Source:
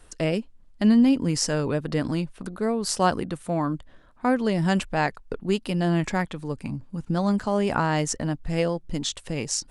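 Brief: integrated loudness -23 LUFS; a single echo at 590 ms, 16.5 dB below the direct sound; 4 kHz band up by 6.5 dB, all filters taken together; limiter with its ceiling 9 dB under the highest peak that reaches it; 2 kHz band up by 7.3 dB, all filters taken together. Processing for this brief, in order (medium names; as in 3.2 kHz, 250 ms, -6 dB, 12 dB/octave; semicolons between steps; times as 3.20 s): peaking EQ 2 kHz +8 dB; peaking EQ 4 kHz +6.5 dB; peak limiter -14.5 dBFS; delay 590 ms -16.5 dB; trim +3.5 dB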